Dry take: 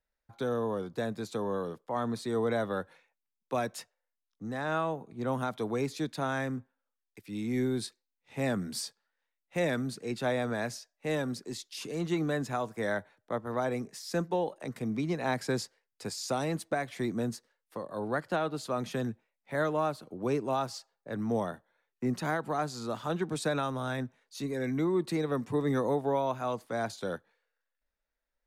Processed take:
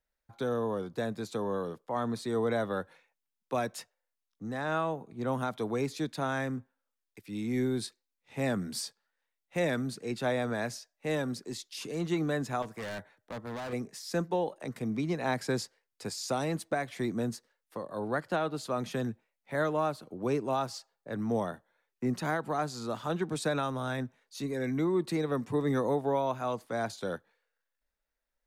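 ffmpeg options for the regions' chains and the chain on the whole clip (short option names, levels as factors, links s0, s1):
-filter_complex "[0:a]asettb=1/sr,asplit=3[s0][s1][s2];[s0]atrim=end=12.624[s3];[s1]atrim=start=12.62:end=13.73,asetpts=PTS-STARTPTS,afade=t=in:d=0.004:c=qsin,afade=t=out:st=1.106:d=0.004:c=qsin,equalizer=f=1900:t=o:w=0.39:g=3,asoftclip=type=hard:threshold=0.015[s4];[s2]atrim=start=13.726[s5];[s3][s4]acrossfade=d=0.004:c1=hsin:c2=qsin[s6];[s6][s5]acrossfade=d=0.004:c1=qsin:c2=hsin"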